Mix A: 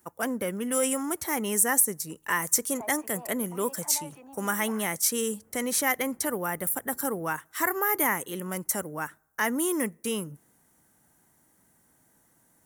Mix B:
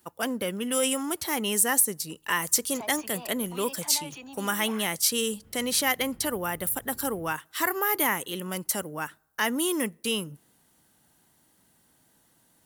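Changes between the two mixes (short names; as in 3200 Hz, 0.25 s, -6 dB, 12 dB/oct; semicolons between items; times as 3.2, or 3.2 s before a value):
background: remove band-pass 670 Hz, Q 0.7; master: add band shelf 3600 Hz +9 dB 1.1 oct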